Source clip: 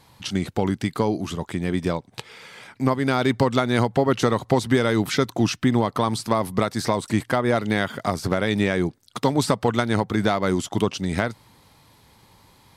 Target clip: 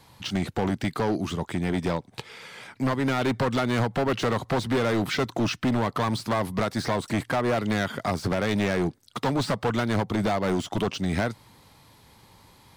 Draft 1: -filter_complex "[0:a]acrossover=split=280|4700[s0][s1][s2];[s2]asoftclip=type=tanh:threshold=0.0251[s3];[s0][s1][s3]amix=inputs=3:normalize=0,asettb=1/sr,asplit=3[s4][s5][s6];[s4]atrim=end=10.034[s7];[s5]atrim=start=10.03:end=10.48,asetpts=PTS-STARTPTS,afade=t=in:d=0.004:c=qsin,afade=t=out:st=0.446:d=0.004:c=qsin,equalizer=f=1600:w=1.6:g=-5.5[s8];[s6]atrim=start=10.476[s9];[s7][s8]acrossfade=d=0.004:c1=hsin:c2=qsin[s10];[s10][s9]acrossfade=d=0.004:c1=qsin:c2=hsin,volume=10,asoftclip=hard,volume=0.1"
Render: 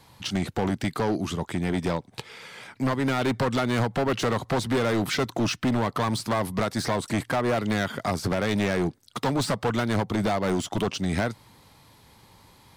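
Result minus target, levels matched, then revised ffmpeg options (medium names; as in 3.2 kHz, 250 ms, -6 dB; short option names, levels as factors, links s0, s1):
saturation: distortion -8 dB
-filter_complex "[0:a]acrossover=split=280|4700[s0][s1][s2];[s2]asoftclip=type=tanh:threshold=0.00708[s3];[s0][s1][s3]amix=inputs=3:normalize=0,asettb=1/sr,asplit=3[s4][s5][s6];[s4]atrim=end=10.034[s7];[s5]atrim=start=10.03:end=10.48,asetpts=PTS-STARTPTS,afade=t=in:d=0.004:c=qsin,afade=t=out:st=0.446:d=0.004:c=qsin,equalizer=f=1600:w=1.6:g=-5.5[s8];[s6]atrim=start=10.476[s9];[s7][s8]acrossfade=d=0.004:c1=hsin:c2=qsin[s10];[s10][s9]acrossfade=d=0.004:c1=qsin:c2=hsin,volume=10,asoftclip=hard,volume=0.1"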